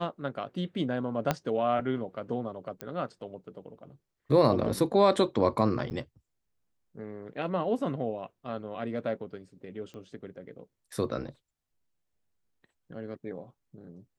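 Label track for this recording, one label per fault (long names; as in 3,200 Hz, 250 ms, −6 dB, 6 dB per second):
1.310000	1.310000	click −11 dBFS
2.810000	2.810000	click −19 dBFS
5.900000	5.910000	drop-out 9.4 ms
9.940000	9.940000	click −33 dBFS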